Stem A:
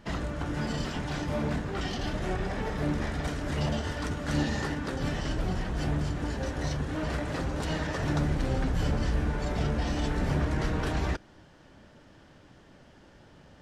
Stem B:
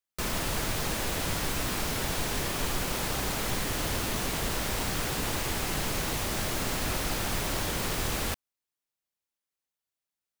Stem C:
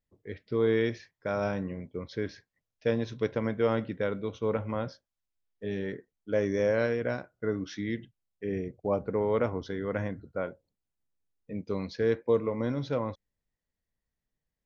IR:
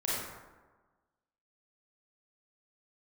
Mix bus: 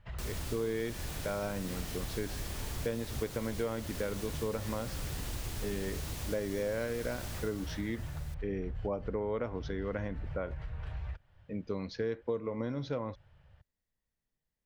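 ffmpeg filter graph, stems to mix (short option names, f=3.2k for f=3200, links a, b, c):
-filter_complex "[0:a]firequalizer=gain_entry='entry(100,0);entry(260,-29);entry(510,-13);entry(2500,-9);entry(6000,-23)':delay=0.05:min_phase=1,alimiter=level_in=6.5dB:limit=-24dB:level=0:latency=1:release=287,volume=-6.5dB,volume=-1dB[a];[1:a]acrossover=split=400|3000[b][c][d];[c]acompressor=threshold=-39dB:ratio=6[e];[b][e][d]amix=inputs=3:normalize=0,volume=-10dB,afade=t=out:st=7.22:d=0.57:silence=0.237137[f];[2:a]volume=-1.5dB,asplit=2[g][h];[h]apad=whole_len=604745[i];[a][i]sidechaincompress=threshold=-32dB:ratio=8:attack=7.9:release=145[j];[j][f][g]amix=inputs=3:normalize=0,acompressor=threshold=-31dB:ratio=4"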